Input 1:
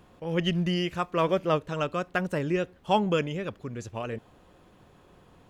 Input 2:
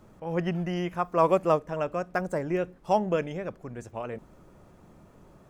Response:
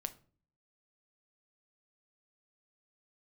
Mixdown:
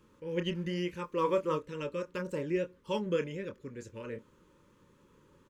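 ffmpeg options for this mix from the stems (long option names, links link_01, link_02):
-filter_complex "[0:a]volume=-9.5dB[link_01];[1:a]highpass=190,equalizer=frequency=6500:width=3.1:gain=5,flanger=delay=22.5:depth=7.4:speed=1.1,adelay=0.4,volume=-6dB[link_02];[link_01][link_02]amix=inputs=2:normalize=0,asuperstop=centerf=710:order=12:qfactor=2.5"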